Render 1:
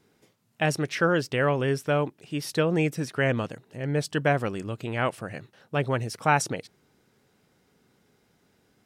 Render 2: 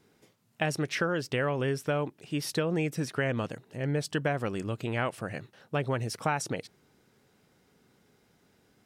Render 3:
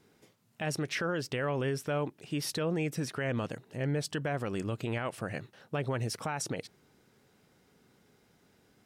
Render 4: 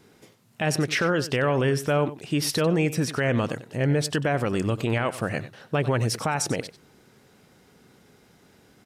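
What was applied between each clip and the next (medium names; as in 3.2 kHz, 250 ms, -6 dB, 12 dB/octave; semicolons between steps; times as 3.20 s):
compression 6:1, threshold -25 dBFS, peak gain reduction 9 dB
peak limiter -23.5 dBFS, peak gain reduction 9.5 dB
delay 94 ms -15 dB; resampled via 32 kHz; trim +9 dB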